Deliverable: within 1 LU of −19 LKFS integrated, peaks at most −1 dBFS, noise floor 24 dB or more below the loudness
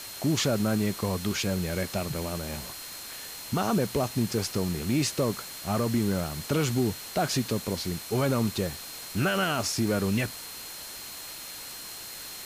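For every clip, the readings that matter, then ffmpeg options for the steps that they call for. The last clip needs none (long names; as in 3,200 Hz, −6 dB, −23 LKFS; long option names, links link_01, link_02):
interfering tone 4,200 Hz; level of the tone −45 dBFS; background noise floor −41 dBFS; target noise floor −53 dBFS; integrated loudness −29.0 LKFS; sample peak −16.0 dBFS; target loudness −19.0 LKFS
→ -af "bandreject=frequency=4200:width=30"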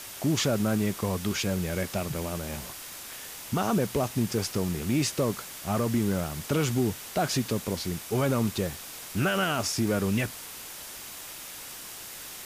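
interfering tone none found; background noise floor −42 dBFS; target noise floor −54 dBFS
→ -af "afftdn=noise_reduction=12:noise_floor=-42"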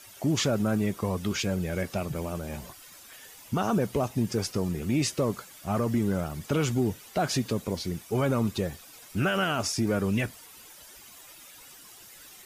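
background noise floor −50 dBFS; target noise floor −53 dBFS
→ -af "afftdn=noise_reduction=6:noise_floor=-50"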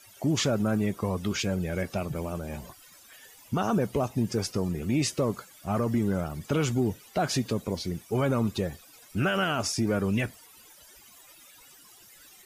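background noise floor −54 dBFS; integrated loudness −29.0 LKFS; sample peak −17.0 dBFS; target loudness −19.0 LKFS
→ -af "volume=10dB"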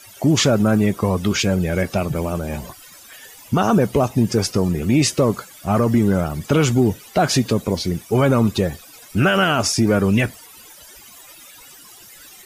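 integrated loudness −19.0 LKFS; sample peak −7.0 dBFS; background noise floor −44 dBFS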